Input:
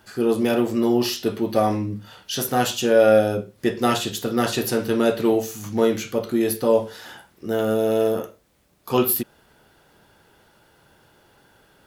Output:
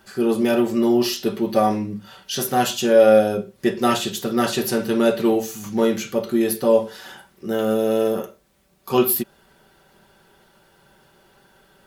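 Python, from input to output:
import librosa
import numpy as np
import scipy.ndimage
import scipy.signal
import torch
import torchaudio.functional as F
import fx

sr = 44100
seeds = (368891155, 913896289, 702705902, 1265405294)

y = x + 0.51 * np.pad(x, (int(5.2 * sr / 1000.0), 0))[:len(x)]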